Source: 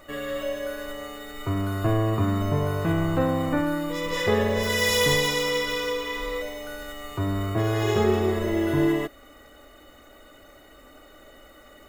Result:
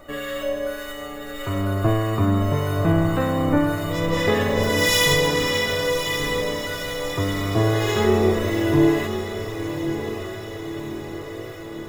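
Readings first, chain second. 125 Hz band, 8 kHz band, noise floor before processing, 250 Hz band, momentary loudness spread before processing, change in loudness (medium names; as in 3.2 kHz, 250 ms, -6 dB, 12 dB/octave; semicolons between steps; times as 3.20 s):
+4.0 dB, +4.5 dB, -51 dBFS, +4.5 dB, 13 LU, +3.0 dB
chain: harmonic tremolo 1.7 Hz, depth 50%, crossover 1.2 kHz; echo that smears into a reverb 1109 ms, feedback 61%, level -9 dB; trim +5.5 dB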